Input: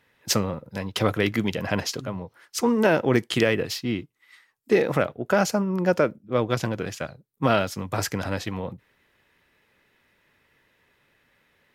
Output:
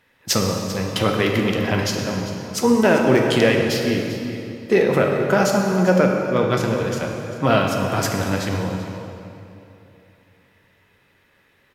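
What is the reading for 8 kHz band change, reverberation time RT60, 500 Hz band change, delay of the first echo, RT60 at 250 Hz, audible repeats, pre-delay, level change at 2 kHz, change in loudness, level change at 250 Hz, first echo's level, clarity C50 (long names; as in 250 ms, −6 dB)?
+4.5 dB, 2.9 s, +5.5 dB, 393 ms, 3.2 s, 1, 5 ms, +5.0 dB, +5.0 dB, +6.0 dB, −14.0 dB, 2.5 dB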